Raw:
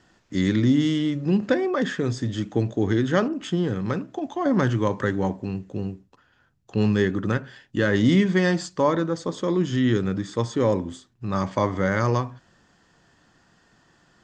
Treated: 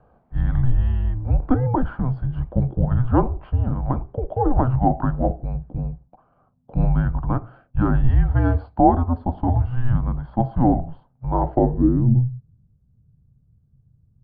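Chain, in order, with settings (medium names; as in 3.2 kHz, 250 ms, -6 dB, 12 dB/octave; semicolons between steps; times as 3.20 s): resampled via 11.025 kHz; frequency shift -250 Hz; low-pass sweep 750 Hz -> 130 Hz, 11.48–12.27 s; trim +3 dB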